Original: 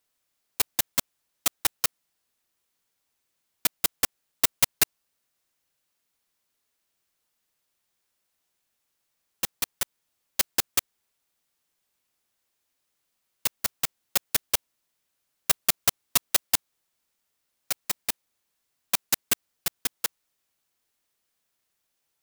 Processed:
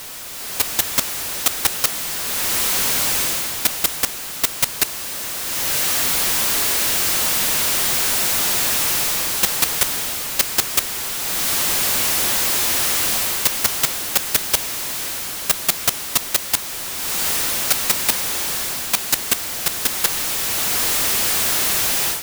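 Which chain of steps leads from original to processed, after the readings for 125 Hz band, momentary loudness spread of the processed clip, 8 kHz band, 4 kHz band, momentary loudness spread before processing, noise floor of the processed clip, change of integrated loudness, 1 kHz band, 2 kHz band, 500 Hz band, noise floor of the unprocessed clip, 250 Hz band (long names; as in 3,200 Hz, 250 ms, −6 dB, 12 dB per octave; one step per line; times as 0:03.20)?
+12.5 dB, 6 LU, +12.5 dB, +12.5 dB, 9 LU, −29 dBFS, +9.0 dB, +12.5 dB, +12.5 dB, +12.5 dB, −78 dBFS, +12.5 dB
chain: converter with a step at zero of −22 dBFS
automatic gain control
slack as between gear wheels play −29.5 dBFS
level −1 dB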